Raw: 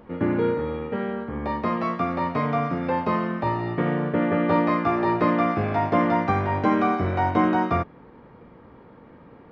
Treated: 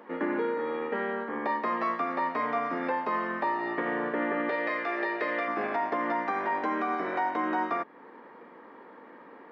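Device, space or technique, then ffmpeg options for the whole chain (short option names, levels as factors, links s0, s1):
laptop speaker: -filter_complex "[0:a]highpass=f=260:w=0.5412,highpass=f=260:w=1.3066,equalizer=f=1000:t=o:w=0.57:g=5,equalizer=f=1800:t=o:w=0.39:g=8.5,alimiter=limit=0.112:level=0:latency=1:release=334,asettb=1/sr,asplit=3[s0][s1][s2];[s0]atrim=end=4.494[s3];[s1]atrim=start=4.49:end=5.48,asetpts=PTS-STARTPTS,afade=t=in:d=0.004:c=qsin,afade=t=out:st=0.986:d=0.004:c=qsin,equalizer=f=125:t=o:w=1:g=-4,equalizer=f=250:t=o:w=1:g=-9,equalizer=f=500:t=o:w=1:g=7,equalizer=f=1000:t=o:w=1:g=-9,equalizer=f=2000:t=o:w=1:g=6,equalizer=f=4000:t=o:w=1:g=5[s4];[s2]atrim=start=5.476[s5];[s3][s4]acrossfade=d=0.004:c1=hsin:c2=qsin[s6];[s6][s5]acrossfade=d=0.004:c1=qsin:c2=hsin,volume=0.891"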